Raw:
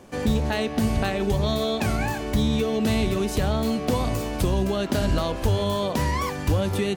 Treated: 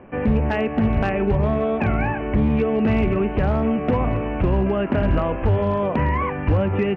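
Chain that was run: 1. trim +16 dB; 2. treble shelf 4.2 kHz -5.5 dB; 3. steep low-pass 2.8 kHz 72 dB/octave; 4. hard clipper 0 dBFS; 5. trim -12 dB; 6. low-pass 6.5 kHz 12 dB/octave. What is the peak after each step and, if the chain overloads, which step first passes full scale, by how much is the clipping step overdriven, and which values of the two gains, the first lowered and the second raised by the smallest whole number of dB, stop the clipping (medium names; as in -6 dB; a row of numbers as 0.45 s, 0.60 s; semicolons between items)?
+5.5 dBFS, +5.5 dBFS, +5.0 dBFS, 0.0 dBFS, -12.0 dBFS, -12.0 dBFS; step 1, 5.0 dB; step 1 +11 dB, step 5 -7 dB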